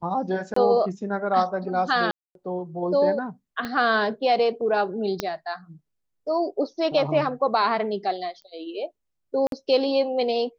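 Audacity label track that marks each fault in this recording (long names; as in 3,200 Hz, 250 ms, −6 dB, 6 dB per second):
0.540000	0.560000	drop-out 24 ms
2.110000	2.350000	drop-out 242 ms
3.650000	3.650000	click −16 dBFS
5.200000	5.200000	click −10 dBFS
8.420000	8.420000	click −33 dBFS
9.470000	9.520000	drop-out 52 ms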